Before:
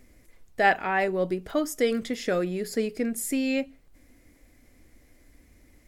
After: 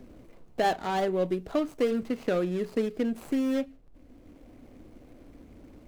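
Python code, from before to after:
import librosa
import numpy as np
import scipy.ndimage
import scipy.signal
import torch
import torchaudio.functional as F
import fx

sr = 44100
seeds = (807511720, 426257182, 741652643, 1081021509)

y = scipy.signal.medfilt(x, 25)
y = fx.band_squash(y, sr, depth_pct=40)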